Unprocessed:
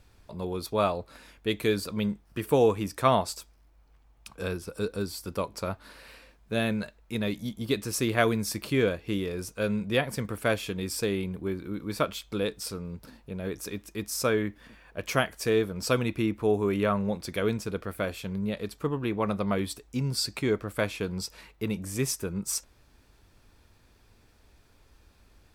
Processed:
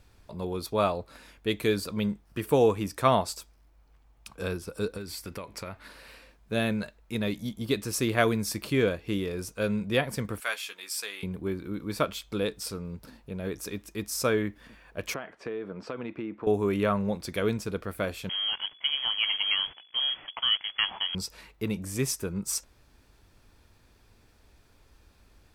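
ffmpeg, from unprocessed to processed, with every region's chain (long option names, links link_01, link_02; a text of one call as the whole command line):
ffmpeg -i in.wav -filter_complex "[0:a]asettb=1/sr,asplit=3[link_01][link_02][link_03];[link_01]atrim=end=4.974[link_04];[link_02]atrim=start=4.97:end=5.88,asetpts=PTS-STARTPTS,afade=type=in:duration=0.004:curve=qsin,afade=type=out:start_time=0.906:duration=0.004:curve=qsin,equalizer=frequency=2100:width=1.9:gain=9,acompressor=threshold=-33dB:ratio=12:attack=3.2:release=140:knee=1:detection=peak[link_05];[link_03]atrim=start=5.876[link_06];[link_04][link_05]acrossfade=duration=0.004:curve1=hsin:curve2=qsin[link_07];[link_07][link_06]acrossfade=duration=0.004:curve1=qsin:curve2=hsin,asettb=1/sr,asplit=3[link_08][link_09][link_10];[link_08]atrim=end=10.404[link_11];[link_09]atrim=start=10.4:end=11.23,asetpts=PTS-STARTPTS,afade=type=in:duration=0.004:curve=qsin,afade=type=out:start_time=0.826:duration=0.004:curve=qsin,highpass=1200,asplit=2[link_12][link_13];[link_13]adelay=14,volume=-8dB[link_14];[link_12][link_14]amix=inputs=2:normalize=0,atrim=end_sample=36603[link_15];[link_10]atrim=start=11.226[link_16];[link_11][link_15]acrossfade=duration=0.004:curve1=hsin:curve2=qsin[link_17];[link_17][link_16]acrossfade=duration=0.004:curve1=qsin:curve2=hsin,asettb=1/sr,asplit=3[link_18][link_19][link_20];[link_18]atrim=end=15.144[link_21];[link_19]atrim=start=15.14:end=16.47,asetpts=PTS-STARTPTS,afade=type=in:duration=0.004:curve=qsin,afade=type=out:start_time=1.326:duration=0.004:curve=qsin,highpass=220,lowpass=2000,acompressor=threshold=-30dB:ratio=12:attack=3.2:release=140:knee=1:detection=peak[link_22];[link_20]atrim=start=16.466[link_23];[link_21][link_22]acrossfade=duration=0.004:curve1=hsin:curve2=qsin[link_24];[link_24][link_23]acrossfade=duration=0.004:curve1=qsin:curve2=hsin,asettb=1/sr,asplit=3[link_25][link_26][link_27];[link_25]atrim=end=18.294[link_28];[link_26]atrim=start=18.29:end=21.15,asetpts=PTS-STARTPTS,afade=type=in:duration=0.004:curve=qsin,afade=type=out:start_time=2.856:duration=0.004:curve=qsin,highpass=frequency=50:width=0.5412,highpass=frequency=50:width=1.3066,acrusher=bits=7:dc=4:mix=0:aa=0.000001,lowpass=frequency=2900:width_type=q:width=0.5098,lowpass=frequency=2900:width_type=q:width=0.6013,lowpass=frequency=2900:width_type=q:width=0.9,lowpass=frequency=2900:width_type=q:width=2.563,afreqshift=-3400[link_29];[link_27]atrim=start=21.146[link_30];[link_28][link_29]acrossfade=duration=0.004:curve1=hsin:curve2=qsin[link_31];[link_31][link_30]acrossfade=duration=0.004:curve1=qsin:curve2=hsin" out.wav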